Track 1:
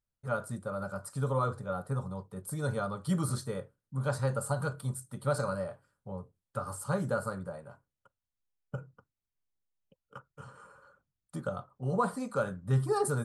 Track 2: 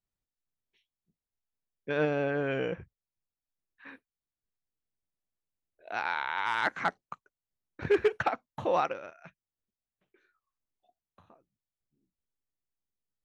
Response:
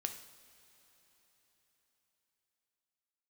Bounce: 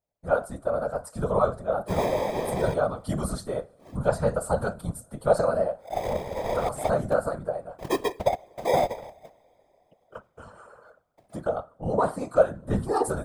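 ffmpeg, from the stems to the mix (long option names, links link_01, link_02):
-filter_complex "[0:a]dynaudnorm=framelen=160:gausssize=3:maxgain=5dB,volume=1dB,asplit=2[link_01][link_02];[link_02]volume=-14.5dB[link_03];[1:a]acrusher=samples=31:mix=1:aa=0.000001,adynamicequalizer=threshold=0.00355:dfrequency=5300:dqfactor=0.7:tfrequency=5300:tqfactor=0.7:attack=5:release=100:ratio=0.375:range=4:mode=cutabove:tftype=highshelf,volume=0.5dB,asplit=2[link_04][link_05];[link_05]volume=-12dB[link_06];[2:a]atrim=start_sample=2205[link_07];[link_03][link_06]amix=inputs=2:normalize=0[link_08];[link_08][link_07]afir=irnorm=-1:irlink=0[link_09];[link_01][link_04][link_09]amix=inputs=3:normalize=0,equalizer=frequency=650:width=2.3:gain=14.5,afftfilt=real='hypot(re,im)*cos(2*PI*random(0))':imag='hypot(re,im)*sin(2*PI*random(1))':win_size=512:overlap=0.75"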